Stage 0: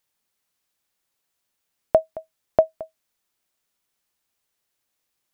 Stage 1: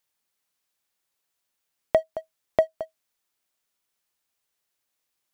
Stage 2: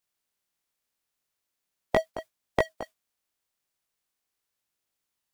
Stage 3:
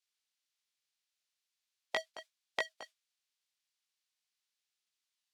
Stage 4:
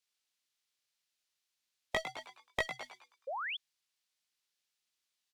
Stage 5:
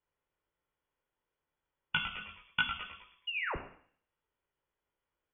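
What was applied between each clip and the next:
waveshaping leveller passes 1; in parallel at +1 dB: compression, threshold -23 dBFS, peak gain reduction 12.5 dB; on the sum: bass shelf 360 Hz -4 dB; trim -6.5 dB
spectral peaks clipped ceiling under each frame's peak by 19 dB; chorus voices 2, 0.41 Hz, delay 20 ms, depth 3 ms
band-pass filter 4 kHz, Q 0.95; trim +1 dB
valve stage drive 22 dB, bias 0.65; frequency-shifting echo 104 ms, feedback 40%, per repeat +120 Hz, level -9 dB; painted sound rise, 3.27–3.57 s, 490–3600 Hz -43 dBFS; trim +5 dB
reverberation RT60 0.65 s, pre-delay 10 ms, DRR 4 dB; frequency inversion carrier 3.4 kHz

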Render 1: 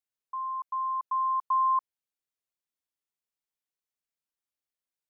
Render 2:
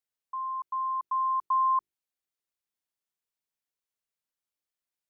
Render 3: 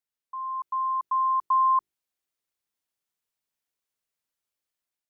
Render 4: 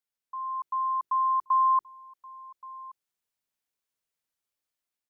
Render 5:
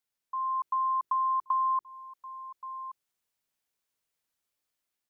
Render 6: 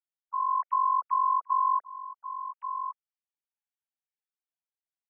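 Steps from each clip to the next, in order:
hum notches 50/100/150/200/250/300/350/400 Hz
level rider gain up to 5.5 dB; trim -2 dB
delay 1126 ms -20.5 dB; trim -1 dB
compression 6:1, threshold -29 dBFS, peak gain reduction 8 dB; trim +3 dB
formants replaced by sine waves; trim +2.5 dB

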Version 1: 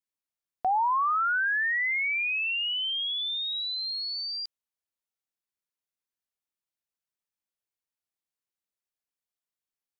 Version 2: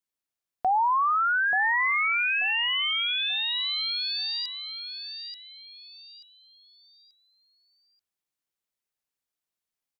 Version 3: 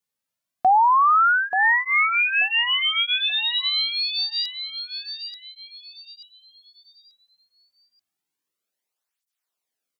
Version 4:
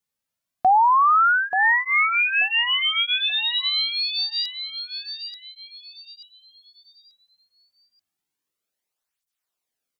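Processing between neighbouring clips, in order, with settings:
feedback delay 884 ms, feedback 32%, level -7.5 dB; trim +2 dB
cancelling through-zero flanger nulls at 0.27 Hz, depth 3.2 ms; trim +7.5 dB
bass shelf 100 Hz +7 dB

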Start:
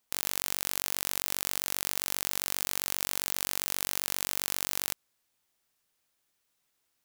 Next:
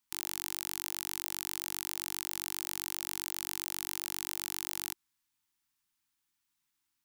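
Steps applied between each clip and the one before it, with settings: elliptic band-stop 340–860 Hz, stop band 50 dB; trim -5 dB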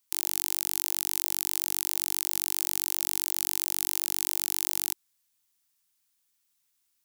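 treble shelf 3.6 kHz +10.5 dB; trim -1 dB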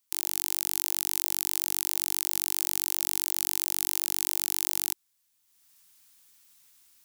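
level rider gain up to 15 dB; trim -1 dB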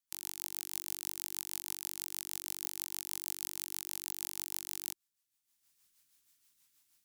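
rotary cabinet horn 6.3 Hz; trim -7.5 dB

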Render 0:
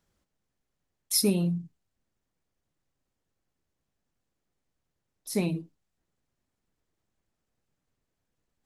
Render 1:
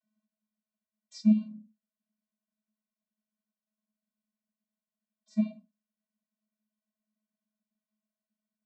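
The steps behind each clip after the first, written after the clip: vocoder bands 32, square 214 Hz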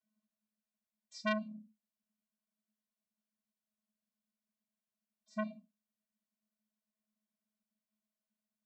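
transformer saturation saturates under 1.6 kHz; trim -3.5 dB

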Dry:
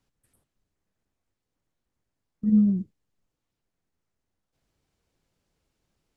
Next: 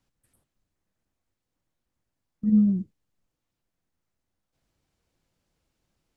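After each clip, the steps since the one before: band-stop 420 Hz, Q 12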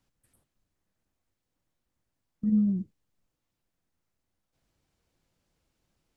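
compression 1.5:1, threshold -29 dBFS, peak gain reduction 5 dB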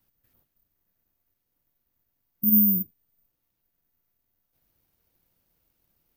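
careless resampling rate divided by 3×, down filtered, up zero stuff

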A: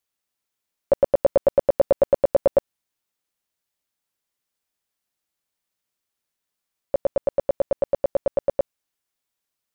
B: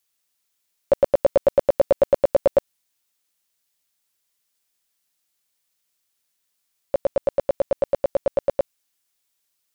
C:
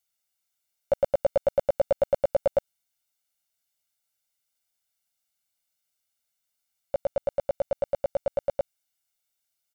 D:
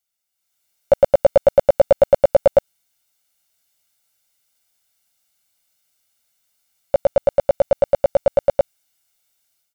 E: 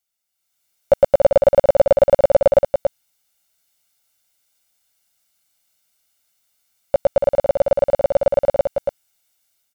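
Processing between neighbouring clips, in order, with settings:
treble shelf 2.1 kHz +9.5 dB
comb 1.4 ms, depth 71%; trim -8 dB
level rider gain up to 11.5 dB
delay 282 ms -6 dB

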